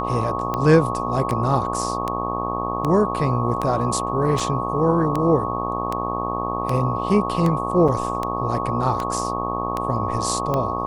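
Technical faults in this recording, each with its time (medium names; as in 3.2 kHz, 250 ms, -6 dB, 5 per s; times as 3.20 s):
buzz 60 Hz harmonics 21 -27 dBFS
tick 78 rpm -11 dBFS
whine 1.1 kHz -26 dBFS
4.40 s: dropout 3.2 ms
7.88–7.89 s: dropout 5.3 ms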